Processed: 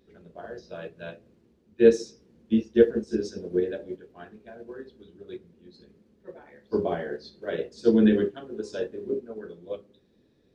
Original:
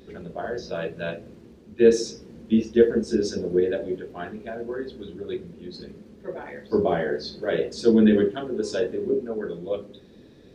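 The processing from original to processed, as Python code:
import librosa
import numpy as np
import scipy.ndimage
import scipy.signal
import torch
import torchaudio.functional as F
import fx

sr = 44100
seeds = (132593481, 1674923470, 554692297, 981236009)

y = fx.upward_expand(x, sr, threshold_db=-40.0, expansion=1.5)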